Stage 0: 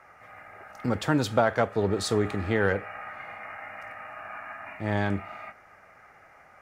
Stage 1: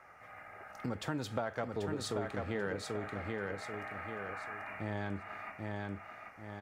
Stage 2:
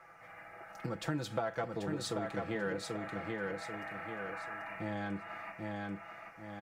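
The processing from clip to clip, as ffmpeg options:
ffmpeg -i in.wav -af "aecho=1:1:787|1574|2361|3148:0.562|0.174|0.054|0.0168,acompressor=threshold=-33dB:ratio=2.5,volume=-4dB" out.wav
ffmpeg -i in.wav -af "aecho=1:1:6:0.7,volume=-1dB" out.wav

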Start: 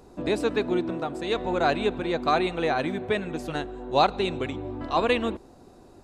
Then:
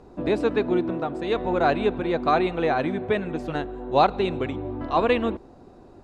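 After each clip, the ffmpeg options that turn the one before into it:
ffmpeg -i in.wav -af "aemphasis=mode=reproduction:type=75fm,volume=2dB" out.wav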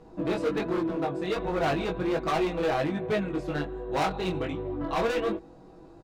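ffmpeg -i in.wav -af "aecho=1:1:6.2:0.68,volume=20.5dB,asoftclip=hard,volume=-20.5dB,flanger=delay=18.5:depth=3.8:speed=1.3" out.wav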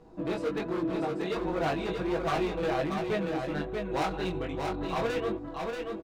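ffmpeg -i in.wav -af "aecho=1:1:634:0.596,volume=-3.5dB" out.wav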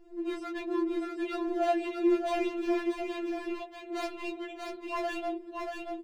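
ffmpeg -i in.wav -af "afftfilt=real='re*4*eq(mod(b,16),0)':imag='im*4*eq(mod(b,16),0)':win_size=2048:overlap=0.75" out.wav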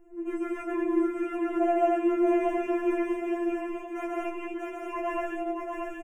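ffmpeg -i in.wav -filter_complex "[0:a]asuperstop=centerf=4200:order=4:qfactor=0.97,acrossover=split=3100[link_01][link_02];[link_02]acompressor=threshold=-59dB:ratio=4:attack=1:release=60[link_03];[link_01][link_03]amix=inputs=2:normalize=0,aecho=1:1:137|227.4:0.891|0.891" out.wav

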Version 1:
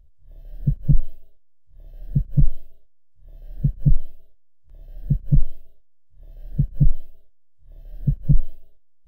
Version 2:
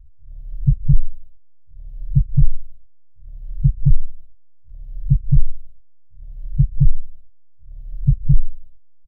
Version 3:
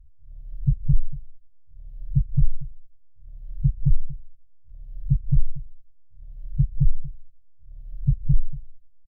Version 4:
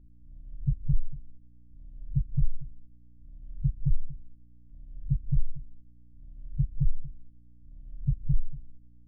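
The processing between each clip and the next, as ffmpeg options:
ffmpeg -i in.wav -af "lowshelf=frequency=460:gain=8.5,alimiter=limit=-1dB:level=0:latency=1:release=58,firequalizer=gain_entry='entry(130,0);entry(290,-29);entry(510,-12);entry(1100,-8)':delay=0.05:min_phase=1,volume=-1dB" out.wav
ffmpeg -i in.wav -af "aecho=1:1:235:0.133,volume=-5.5dB" out.wav
ffmpeg -i in.wav -af "aresample=8000,aresample=44100,aeval=exprs='val(0)+0.00316*(sin(2*PI*60*n/s)+sin(2*PI*2*60*n/s)/2+sin(2*PI*3*60*n/s)/3+sin(2*PI*4*60*n/s)/4+sin(2*PI*5*60*n/s)/5)':channel_layout=same,volume=-6.5dB" out.wav

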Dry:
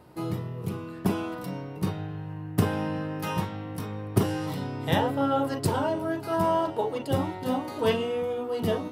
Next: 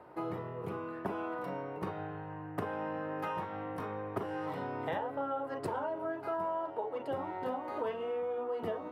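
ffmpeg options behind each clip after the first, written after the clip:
ffmpeg -i in.wav -filter_complex "[0:a]acrossover=split=380 2100:gain=0.178 1 0.0891[link_01][link_02][link_03];[link_01][link_02][link_03]amix=inputs=3:normalize=0,acompressor=threshold=-37dB:ratio=6,volume=3.5dB" out.wav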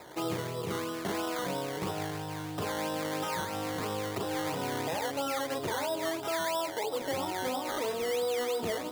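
ffmpeg -i in.wav -af "alimiter=level_in=6.5dB:limit=-24dB:level=0:latency=1:release=14,volume=-6.5dB,acrusher=samples=14:mix=1:aa=0.000001:lfo=1:lforange=8.4:lforate=3,volume=5.5dB" out.wav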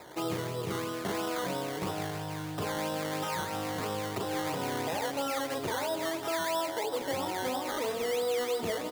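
ffmpeg -i in.wav -af "aecho=1:1:162|324|486|648|810|972:0.2|0.118|0.0695|0.041|0.0242|0.0143" out.wav

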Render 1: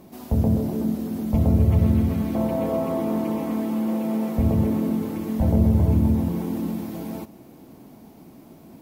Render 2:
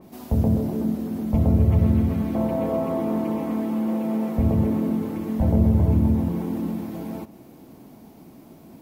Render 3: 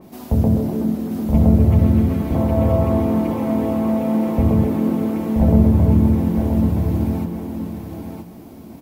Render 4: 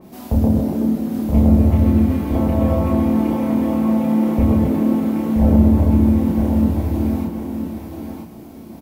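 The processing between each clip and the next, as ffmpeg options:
ffmpeg -i in.wav -af "adynamicequalizer=threshold=0.00316:dfrequency=2900:dqfactor=0.7:tfrequency=2900:tqfactor=0.7:attack=5:release=100:ratio=0.375:range=2.5:mode=cutabove:tftype=highshelf" out.wav
ffmpeg -i in.wav -af "aecho=1:1:976|1952|2928:0.562|0.0956|0.0163,volume=4dB" out.wav
ffmpeg -i in.wav -filter_complex "[0:a]asplit=2[link_01][link_02];[link_02]adelay=31,volume=-2dB[link_03];[link_01][link_03]amix=inputs=2:normalize=0,volume=-1dB" out.wav

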